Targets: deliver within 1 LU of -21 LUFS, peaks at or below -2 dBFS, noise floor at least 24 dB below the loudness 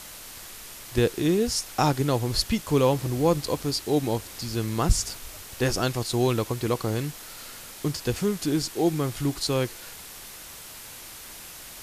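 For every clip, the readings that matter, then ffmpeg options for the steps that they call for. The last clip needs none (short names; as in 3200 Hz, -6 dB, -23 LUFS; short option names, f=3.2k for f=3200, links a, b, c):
noise floor -43 dBFS; noise floor target -50 dBFS; loudness -26.0 LUFS; peak -8.0 dBFS; loudness target -21.0 LUFS
-> -af "afftdn=nr=7:nf=-43"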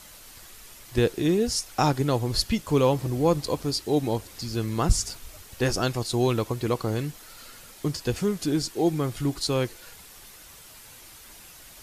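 noise floor -48 dBFS; noise floor target -50 dBFS
-> -af "afftdn=nr=6:nf=-48"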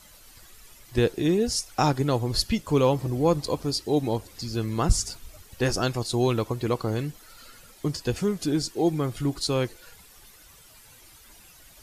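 noise floor -52 dBFS; loudness -26.0 LUFS; peak -8.0 dBFS; loudness target -21.0 LUFS
-> -af "volume=5dB"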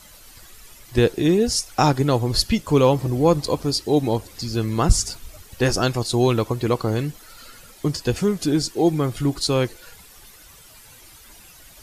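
loudness -21.0 LUFS; peak -3.0 dBFS; noise floor -47 dBFS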